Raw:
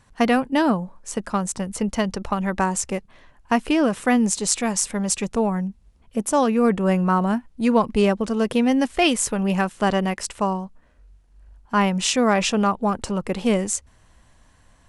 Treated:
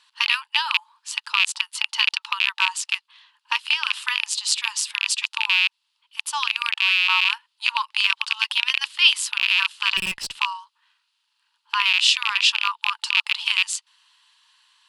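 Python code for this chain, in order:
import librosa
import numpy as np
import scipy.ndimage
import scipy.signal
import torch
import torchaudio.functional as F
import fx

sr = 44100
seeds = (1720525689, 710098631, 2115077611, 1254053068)

p1 = fx.rattle_buzz(x, sr, strikes_db=-25.0, level_db=-11.0)
p2 = fx.brickwall_highpass(p1, sr, low_hz=850.0)
p3 = fx.rider(p2, sr, range_db=5, speed_s=0.5)
p4 = p2 + (p3 * librosa.db_to_amplitude(-0.5))
p5 = fx.band_shelf(p4, sr, hz=3600.0, db=13.0, octaves=1.1)
p6 = fx.tube_stage(p5, sr, drive_db=11.0, bias=0.45, at=(9.97, 10.39))
y = p6 * librosa.db_to_amplitude(-8.5)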